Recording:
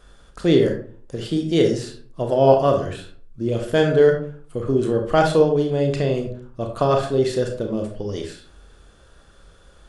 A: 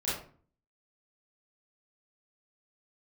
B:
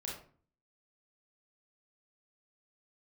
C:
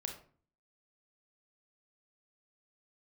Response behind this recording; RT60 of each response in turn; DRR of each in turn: C; 0.45, 0.45, 0.45 seconds; −10.5, −3.5, 3.0 decibels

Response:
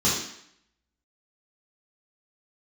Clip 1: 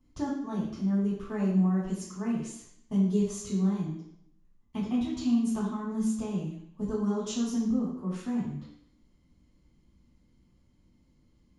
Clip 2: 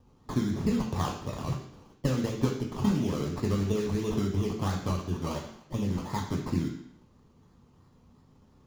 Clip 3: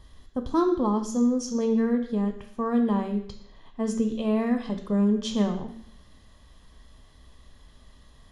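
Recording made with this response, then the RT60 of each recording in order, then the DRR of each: 1; 0.70, 0.70, 0.70 seconds; −9.0, 1.0, 5.5 decibels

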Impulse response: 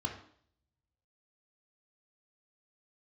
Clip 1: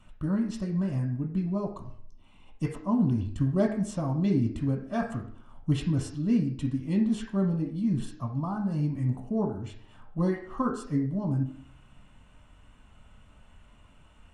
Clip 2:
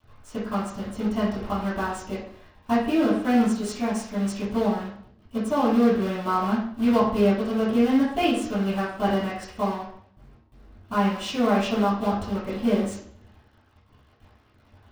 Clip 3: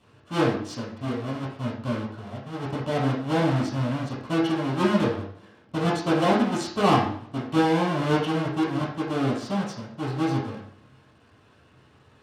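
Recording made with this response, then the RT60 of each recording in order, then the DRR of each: 1; 0.60, 0.60, 0.60 seconds; 2.0, −10.5, −5.5 decibels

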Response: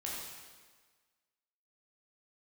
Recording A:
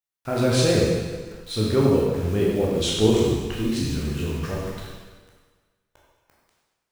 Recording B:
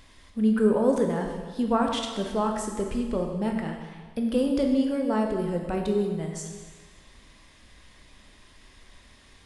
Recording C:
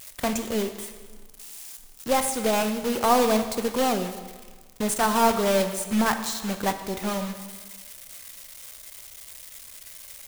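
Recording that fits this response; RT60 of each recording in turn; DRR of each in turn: A; 1.5, 1.5, 1.5 seconds; −5.0, 2.0, 8.0 decibels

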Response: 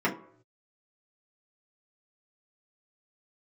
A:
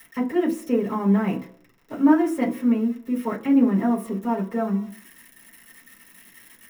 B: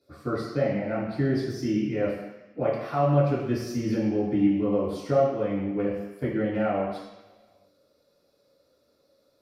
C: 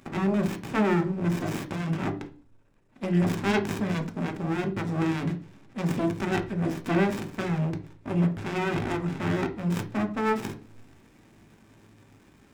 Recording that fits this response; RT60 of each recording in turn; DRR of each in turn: A; 0.65 s, non-exponential decay, 0.45 s; −6.5, −11.5, 5.5 decibels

